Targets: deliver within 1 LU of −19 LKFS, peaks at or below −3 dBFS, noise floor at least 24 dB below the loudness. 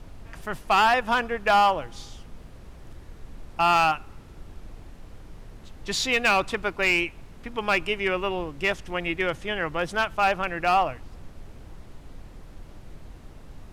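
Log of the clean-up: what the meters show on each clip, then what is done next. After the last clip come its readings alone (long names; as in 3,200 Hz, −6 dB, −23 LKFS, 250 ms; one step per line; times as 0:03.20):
share of clipped samples 0.7%; peaks flattened at −14.0 dBFS; background noise floor −46 dBFS; target noise floor −48 dBFS; integrated loudness −24.0 LKFS; sample peak −14.0 dBFS; target loudness −19.0 LKFS
→ clipped peaks rebuilt −14 dBFS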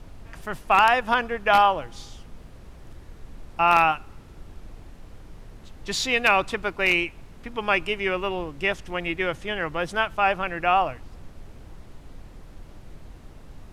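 share of clipped samples 0.0%; background noise floor −46 dBFS; target noise floor −47 dBFS
→ noise reduction from a noise print 6 dB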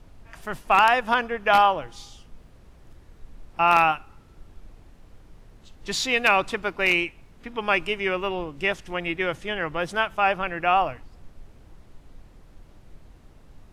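background noise floor −52 dBFS; integrated loudness −23.0 LKFS; sample peak −5.0 dBFS; target loudness −19.0 LKFS
→ level +4 dB
brickwall limiter −3 dBFS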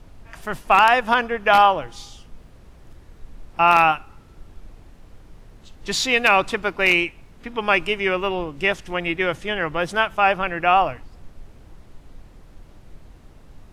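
integrated loudness −19.0 LKFS; sample peak −3.0 dBFS; background noise floor −48 dBFS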